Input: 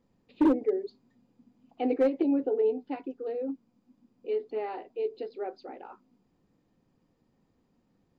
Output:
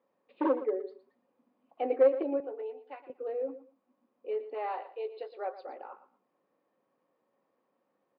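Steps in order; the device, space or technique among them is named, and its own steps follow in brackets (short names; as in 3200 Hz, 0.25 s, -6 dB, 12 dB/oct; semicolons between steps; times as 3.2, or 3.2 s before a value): tin-can telephone (BPF 500–2200 Hz; small resonant body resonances 560/1100 Hz, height 9 dB); 2.4–3.1 HPF 1400 Hz 6 dB/oct; 4.54–5.67 graphic EQ 250/1000/4000 Hz -12/+5/+9 dB; feedback echo 0.116 s, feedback 20%, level -14 dB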